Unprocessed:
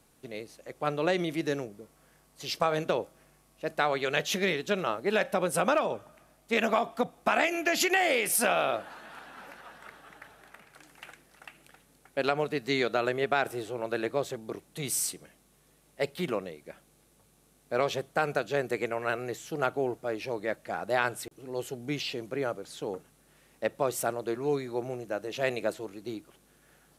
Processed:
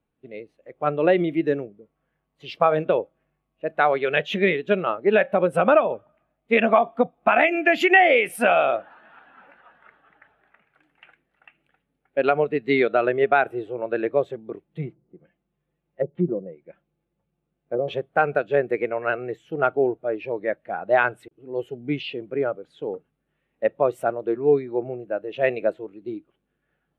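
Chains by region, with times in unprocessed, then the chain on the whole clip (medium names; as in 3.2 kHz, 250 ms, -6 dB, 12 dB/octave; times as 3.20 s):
14.64–17.88 s: low-pass that closes with the level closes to 440 Hz, closed at -27 dBFS + treble shelf 4.2 kHz -5.5 dB + comb 5.8 ms, depth 33%
whole clip: resonant high shelf 4 kHz -8.5 dB, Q 1.5; spectral contrast expander 1.5:1; trim +5 dB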